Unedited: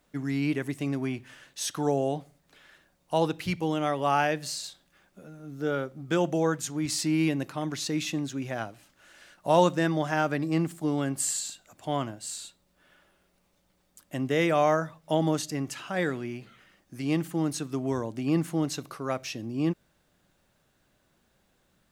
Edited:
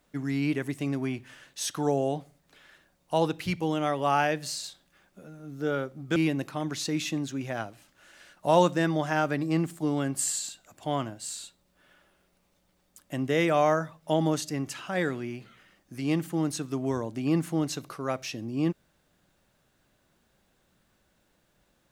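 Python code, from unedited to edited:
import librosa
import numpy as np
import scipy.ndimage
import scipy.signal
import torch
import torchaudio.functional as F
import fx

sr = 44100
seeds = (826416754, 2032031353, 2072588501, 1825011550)

y = fx.edit(x, sr, fx.cut(start_s=6.16, length_s=1.01), tone=tone)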